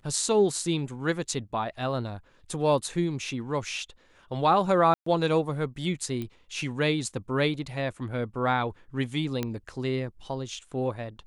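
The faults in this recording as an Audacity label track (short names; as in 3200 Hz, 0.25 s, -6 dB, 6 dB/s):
4.940000	5.060000	gap 0.124 s
6.220000	6.220000	pop -22 dBFS
9.430000	9.430000	pop -15 dBFS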